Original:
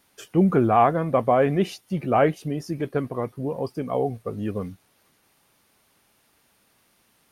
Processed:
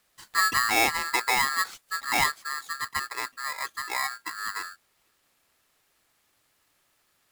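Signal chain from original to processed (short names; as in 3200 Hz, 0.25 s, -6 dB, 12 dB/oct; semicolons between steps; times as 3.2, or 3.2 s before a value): polarity switched at an audio rate 1500 Hz; gain -5.5 dB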